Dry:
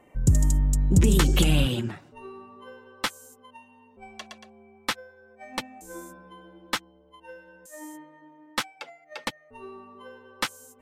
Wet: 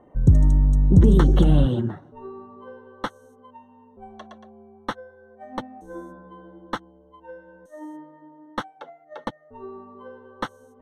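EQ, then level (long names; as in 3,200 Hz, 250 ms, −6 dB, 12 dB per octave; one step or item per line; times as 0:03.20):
moving average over 18 samples
+5.0 dB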